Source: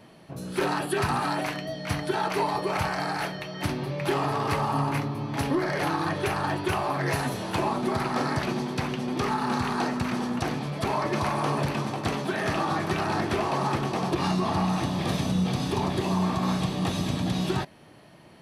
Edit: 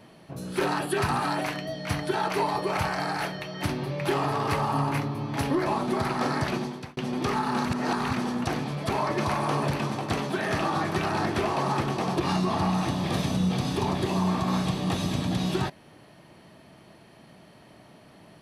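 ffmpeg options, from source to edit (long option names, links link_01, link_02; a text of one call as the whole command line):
ffmpeg -i in.wav -filter_complex "[0:a]asplit=5[link_01][link_02][link_03][link_04][link_05];[link_01]atrim=end=5.662[link_06];[link_02]atrim=start=7.608:end=8.92,asetpts=PTS-STARTPTS,afade=type=out:start_time=0.882:duration=0.43[link_07];[link_03]atrim=start=8.92:end=9.602,asetpts=PTS-STARTPTS,afade=type=in:duration=0.004:curve=hsin[link_08];[link_04]atrim=start=9.598:end=10.082,asetpts=PTS-STARTPTS,areverse[link_09];[link_05]atrim=start=10.078[link_10];[link_07][link_08]concat=n=2:v=0:a=1[link_11];[link_06][link_11]acrossfade=duration=0.004:curve1=hsin:curve2=hsin[link_12];[link_12][link_09]acrossfade=duration=0.004:curve1=hsin:curve2=hsin[link_13];[link_13][link_10]acrossfade=duration=0.004:curve1=hsin:curve2=hsin" out.wav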